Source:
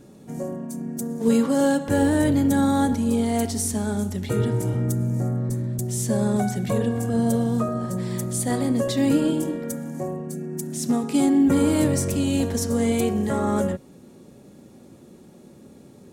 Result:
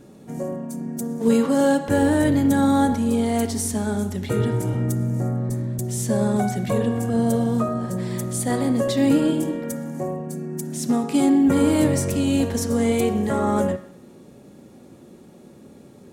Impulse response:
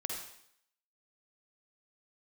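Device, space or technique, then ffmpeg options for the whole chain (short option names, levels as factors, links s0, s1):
filtered reverb send: -filter_complex "[0:a]asplit=2[s0][s1];[s1]highpass=f=320:p=1,lowpass=4200[s2];[1:a]atrim=start_sample=2205[s3];[s2][s3]afir=irnorm=-1:irlink=0,volume=0.376[s4];[s0][s4]amix=inputs=2:normalize=0"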